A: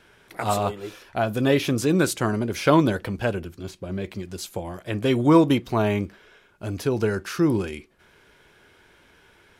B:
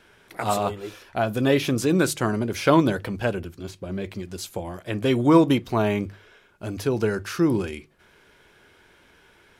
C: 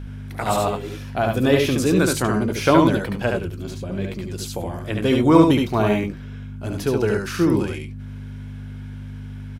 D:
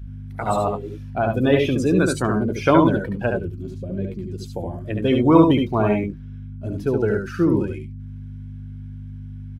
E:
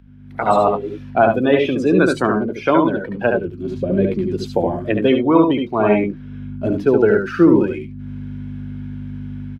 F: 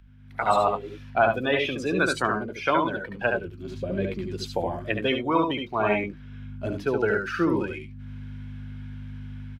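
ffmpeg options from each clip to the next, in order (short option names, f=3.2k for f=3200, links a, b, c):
-af "bandreject=f=50:t=h:w=6,bandreject=f=100:t=h:w=6,bandreject=f=150:t=h:w=6"
-filter_complex "[0:a]aeval=exprs='val(0)+0.0224*(sin(2*PI*50*n/s)+sin(2*PI*2*50*n/s)/2+sin(2*PI*3*50*n/s)/3+sin(2*PI*4*50*n/s)/4+sin(2*PI*5*50*n/s)/5)':c=same,asplit=2[a][b];[b]aecho=0:1:72|91:0.668|0.237[c];[a][c]amix=inputs=2:normalize=0,volume=1.5dB"
-af "afftdn=nr=16:nf=-27"
-filter_complex "[0:a]acrossover=split=190 4300:gain=0.2 1 0.2[a][b][c];[a][b][c]amix=inputs=3:normalize=0,dynaudnorm=f=180:g=3:m=15.5dB,volume=-1dB"
-af "equalizer=f=270:w=0.41:g=-13"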